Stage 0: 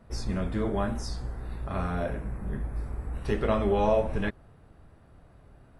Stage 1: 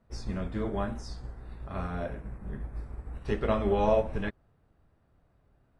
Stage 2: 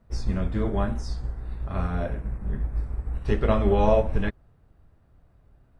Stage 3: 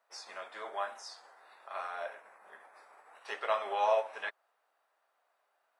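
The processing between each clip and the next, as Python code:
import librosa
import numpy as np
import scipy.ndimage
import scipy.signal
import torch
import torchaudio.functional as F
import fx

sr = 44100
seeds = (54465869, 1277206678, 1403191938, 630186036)

y1 = scipy.signal.sosfilt(scipy.signal.butter(2, 8200.0, 'lowpass', fs=sr, output='sos'), x)
y1 = fx.upward_expand(y1, sr, threshold_db=-45.0, expansion=1.5)
y2 = fx.low_shelf(y1, sr, hz=110.0, db=8.5)
y2 = y2 * 10.0 ** (3.5 / 20.0)
y3 = scipy.signal.sosfilt(scipy.signal.butter(4, 690.0, 'highpass', fs=sr, output='sos'), y2)
y3 = y3 * 10.0 ** (-2.0 / 20.0)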